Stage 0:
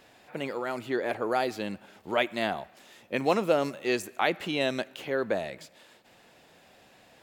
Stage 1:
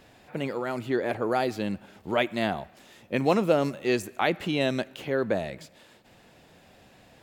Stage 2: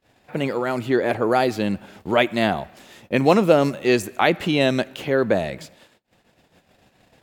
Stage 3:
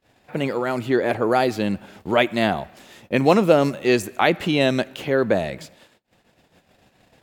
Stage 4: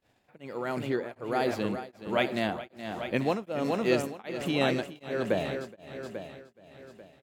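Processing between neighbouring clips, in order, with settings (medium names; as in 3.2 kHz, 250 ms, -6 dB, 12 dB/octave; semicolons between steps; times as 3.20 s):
bass shelf 220 Hz +11 dB
gate -53 dBFS, range -28 dB; trim +7 dB
no audible change
feedback delay 421 ms, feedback 53%, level -6 dB; on a send at -18 dB: reverberation RT60 2.3 s, pre-delay 6 ms; on the sum: tremolo of two beating tones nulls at 1.3 Hz; trim -8 dB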